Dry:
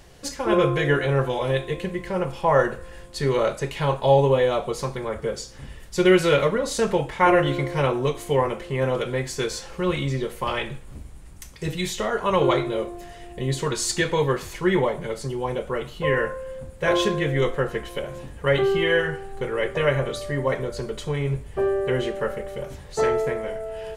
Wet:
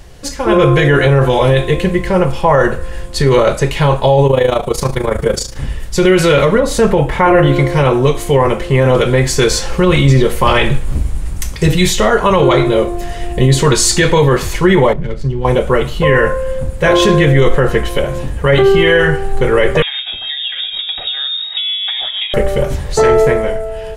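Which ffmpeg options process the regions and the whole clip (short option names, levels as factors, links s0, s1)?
-filter_complex "[0:a]asettb=1/sr,asplit=3[s0][s1][s2];[s0]atrim=end=4.274[s3];[s1]atrim=start=4.27:end=5.57,asetpts=PTS-STARTPTS,afade=t=in:d=0.004:c=qsin,afade=t=out:st=1.296:d=0.004:c=qsin,highshelf=f=11000:g=10.5,tremolo=f=27:d=0.75[s4];[s2]atrim=start=5.566[s5];[s3][s4]acrossfade=d=0.004:c1=hsin:c2=qsin[s6];[s6][s5]acrossfade=d=0.004:c1=qsin:c2=hsin,asettb=1/sr,asplit=3[s7][s8][s9];[s7]atrim=end=6.604[s10];[s8]atrim=start=6.6:end=7.56,asetpts=PTS-STARTPTS,afade=t=in:d=0.004:c=qsin,afade=t=out:st=0.956:d=0.004:c=qsin,equalizer=f=5700:t=o:w=2.1:g=-7.5,acompressor=mode=upward:threshold=0.0447:ratio=2.5:attack=3.2:release=140:knee=2.83:detection=peak[s11];[s9]atrim=start=7.556[s12];[s10][s11]acrossfade=d=0.004:c1=hsin:c2=qsin[s13];[s13][s12]acrossfade=d=0.004:c1=qsin:c2=hsin,asettb=1/sr,asplit=3[s14][s15][s16];[s14]atrim=end=14.934[s17];[s15]atrim=start=14.93:end=15.45,asetpts=PTS-STARTPTS,afade=t=in:d=0.004:c=qsin,afade=t=out:st=0.516:d=0.004:c=qsin,equalizer=f=810:t=o:w=2.8:g=-14,adynamicsmooth=sensitivity=6.5:basefreq=1600[s18];[s16]atrim=start=15.446[s19];[s17][s18]acrossfade=d=0.004:c1=hsin:c2=qsin[s20];[s20][s19]acrossfade=d=0.004:c1=qsin:c2=hsin,asettb=1/sr,asplit=3[s21][s22][s23];[s21]atrim=end=19.824[s24];[s22]atrim=start=19.82:end=22.34,asetpts=PTS-STARTPTS,afade=t=in:d=0.004:c=qsin,afade=t=out:st=2.516:d=0.004:c=qsin,tremolo=f=6.3:d=0.54,acompressor=threshold=0.0178:ratio=6:attack=3.2:release=140:knee=1:detection=peak,lowpass=f=3200:t=q:w=0.5098,lowpass=f=3200:t=q:w=0.6013,lowpass=f=3200:t=q:w=0.9,lowpass=f=3200:t=q:w=2.563,afreqshift=-3800[s25];[s23]atrim=start=22.336[s26];[s24][s25]acrossfade=d=0.004:c1=hsin:c2=qsin[s27];[s27][s26]acrossfade=d=0.004:c1=qsin:c2=hsin,lowshelf=f=88:g=9.5,dynaudnorm=f=110:g=11:m=3.55,alimiter=limit=0.355:level=0:latency=1:release=23,volume=2.37"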